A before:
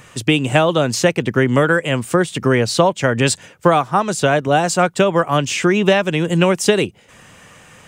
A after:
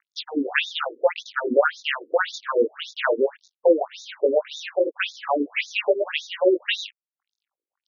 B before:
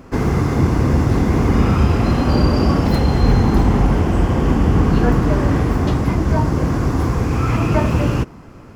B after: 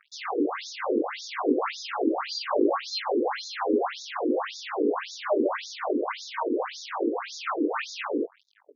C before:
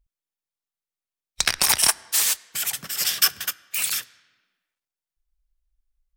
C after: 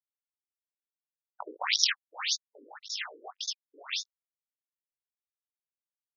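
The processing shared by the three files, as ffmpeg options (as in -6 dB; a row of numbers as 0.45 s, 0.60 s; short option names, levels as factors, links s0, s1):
-af "acrusher=bits=4:mix=0:aa=0.5,flanger=delay=19.5:depth=2.1:speed=0.68,afftfilt=real='re*between(b*sr/1024,360*pow(5000/360,0.5+0.5*sin(2*PI*1.8*pts/sr))/1.41,360*pow(5000/360,0.5+0.5*sin(2*PI*1.8*pts/sr))*1.41)':imag='im*between(b*sr/1024,360*pow(5000/360,0.5+0.5*sin(2*PI*1.8*pts/sr))/1.41,360*pow(5000/360,0.5+0.5*sin(2*PI*1.8*pts/sr))*1.41)':win_size=1024:overlap=0.75,volume=1.58"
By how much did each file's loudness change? -7.5 LU, -12.0 LU, -10.0 LU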